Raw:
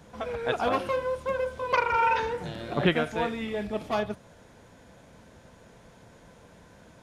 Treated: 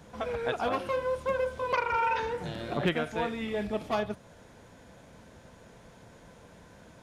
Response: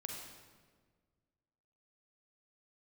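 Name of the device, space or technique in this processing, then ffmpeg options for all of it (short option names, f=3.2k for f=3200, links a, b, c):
clipper into limiter: -af "asoftclip=type=hard:threshold=-14.5dB,alimiter=limit=-19dB:level=0:latency=1:release=419"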